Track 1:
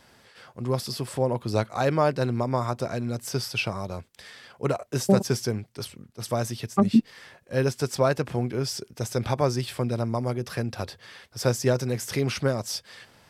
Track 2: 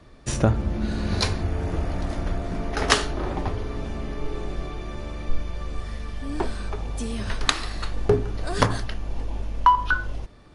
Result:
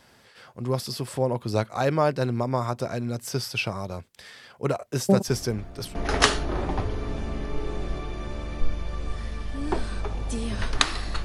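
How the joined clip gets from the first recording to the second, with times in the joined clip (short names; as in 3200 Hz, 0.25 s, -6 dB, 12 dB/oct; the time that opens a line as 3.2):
track 1
5.28 add track 2 from 1.96 s 0.67 s -14.5 dB
5.95 switch to track 2 from 2.63 s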